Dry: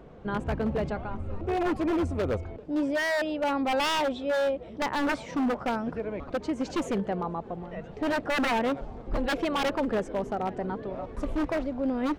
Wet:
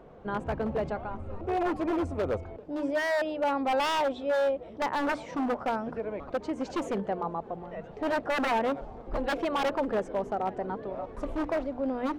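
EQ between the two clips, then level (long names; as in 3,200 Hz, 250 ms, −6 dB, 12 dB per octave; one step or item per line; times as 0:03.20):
parametric band 760 Hz +6 dB 2.2 octaves
mains-hum notches 60/120/180/240/300 Hz
−5.0 dB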